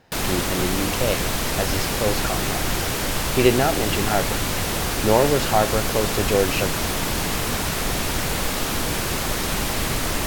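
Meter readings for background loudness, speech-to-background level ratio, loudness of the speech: -23.5 LUFS, -0.5 dB, -24.0 LUFS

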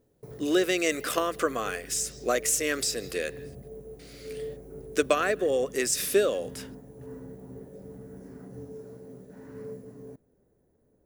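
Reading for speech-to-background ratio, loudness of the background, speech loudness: 17.0 dB, -44.0 LUFS, -27.0 LUFS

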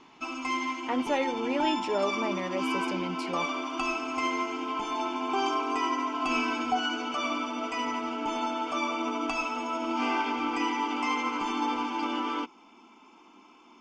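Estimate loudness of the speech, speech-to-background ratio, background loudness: -33.0 LUFS, -2.5 dB, -30.5 LUFS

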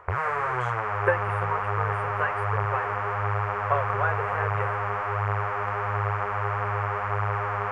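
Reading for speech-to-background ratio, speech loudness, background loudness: -4.5 dB, -32.0 LUFS, -27.5 LUFS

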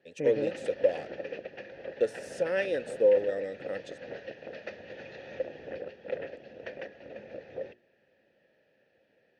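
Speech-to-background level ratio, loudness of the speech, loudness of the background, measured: 12.5 dB, -29.0 LUFS, -41.5 LUFS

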